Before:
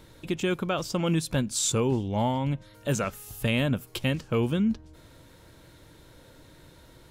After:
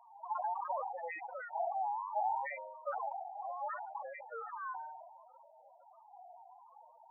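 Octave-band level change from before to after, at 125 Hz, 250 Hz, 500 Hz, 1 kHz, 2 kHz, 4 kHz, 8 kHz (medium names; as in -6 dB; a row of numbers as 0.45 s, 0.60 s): under -40 dB, under -40 dB, -13.5 dB, +0.5 dB, -11.0 dB, under -40 dB, under -40 dB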